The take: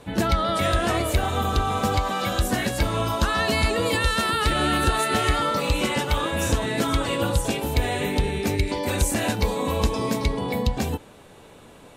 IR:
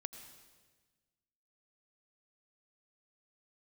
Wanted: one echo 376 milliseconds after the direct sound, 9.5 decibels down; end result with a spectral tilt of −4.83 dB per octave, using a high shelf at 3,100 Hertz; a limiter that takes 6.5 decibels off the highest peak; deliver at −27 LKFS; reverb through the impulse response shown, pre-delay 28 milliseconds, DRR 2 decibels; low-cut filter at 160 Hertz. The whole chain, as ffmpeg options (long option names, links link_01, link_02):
-filter_complex "[0:a]highpass=160,highshelf=frequency=3100:gain=-9,alimiter=limit=-18.5dB:level=0:latency=1,aecho=1:1:376:0.335,asplit=2[link_01][link_02];[1:a]atrim=start_sample=2205,adelay=28[link_03];[link_02][link_03]afir=irnorm=-1:irlink=0,volume=1dB[link_04];[link_01][link_04]amix=inputs=2:normalize=0,volume=-1.5dB"